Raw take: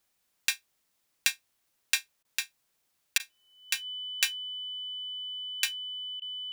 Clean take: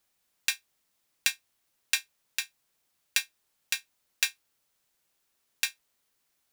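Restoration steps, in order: band-stop 3 kHz, Q 30; interpolate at 2.23/3.18/6.20 s, 17 ms

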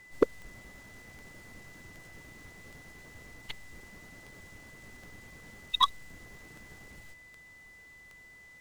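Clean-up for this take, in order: clip repair -12.5 dBFS; de-click; band-stop 2 kHz, Q 30

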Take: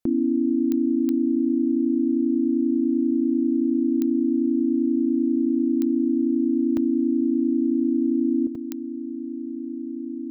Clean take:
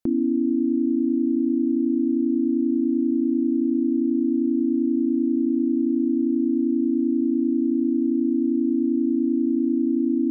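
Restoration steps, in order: de-click; interpolate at 6.77/8.55 s, 3.3 ms; trim 0 dB, from 8.47 s +10 dB

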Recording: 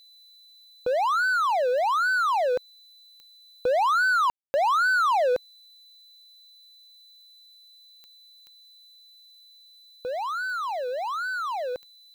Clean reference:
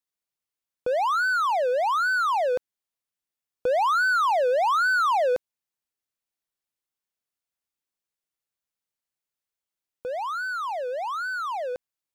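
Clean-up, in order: de-click; band-stop 4 kHz, Q 30; room tone fill 4.30–4.54 s; expander -46 dBFS, range -21 dB

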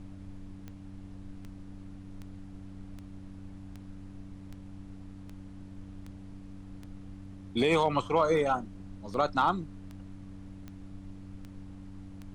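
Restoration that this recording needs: clip repair -15.5 dBFS; de-click; de-hum 96.1 Hz, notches 3; noise print and reduce 29 dB

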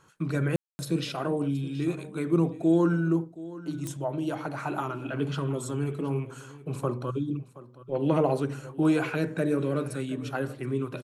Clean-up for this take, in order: de-click; room tone fill 0.56–0.79 s; inverse comb 723 ms -17.5 dB

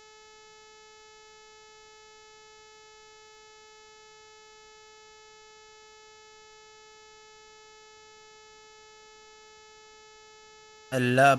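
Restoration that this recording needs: clip repair -9.5 dBFS; de-click; de-hum 432 Hz, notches 17; expander -45 dBFS, range -21 dB

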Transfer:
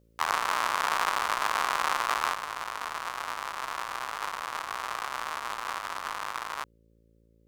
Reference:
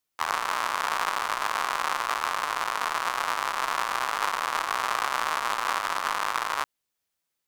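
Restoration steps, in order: de-hum 56.1 Hz, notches 10; gain correction +7 dB, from 2.34 s

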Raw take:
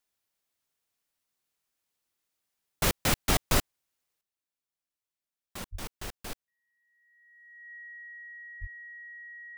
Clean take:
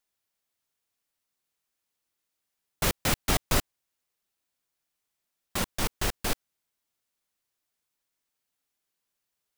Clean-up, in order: band-stop 1.9 kHz, Q 30; de-plosive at 5.71/8.60 s; trim 0 dB, from 4.21 s +11 dB

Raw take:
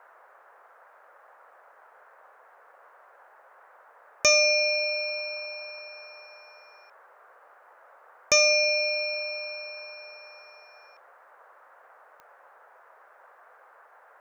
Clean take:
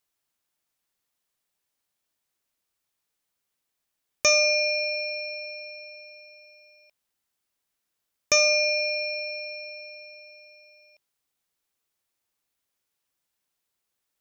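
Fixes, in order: de-click; noise print and reduce 26 dB

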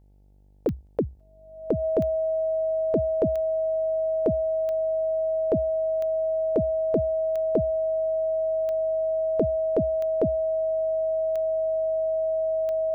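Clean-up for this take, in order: de-click; de-hum 49.5 Hz, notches 18; band-stop 640 Hz, Q 30

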